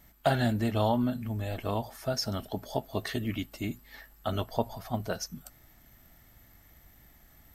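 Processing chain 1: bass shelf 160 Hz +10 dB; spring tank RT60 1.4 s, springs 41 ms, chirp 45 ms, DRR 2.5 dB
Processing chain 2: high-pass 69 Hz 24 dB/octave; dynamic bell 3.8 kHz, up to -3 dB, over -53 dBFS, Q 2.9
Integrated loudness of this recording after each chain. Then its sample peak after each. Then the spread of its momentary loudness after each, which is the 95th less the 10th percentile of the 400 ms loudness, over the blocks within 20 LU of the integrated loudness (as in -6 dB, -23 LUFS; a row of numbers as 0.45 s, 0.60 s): -26.5 LUFS, -32.5 LUFS; -9.5 dBFS, -12.0 dBFS; 12 LU, 10 LU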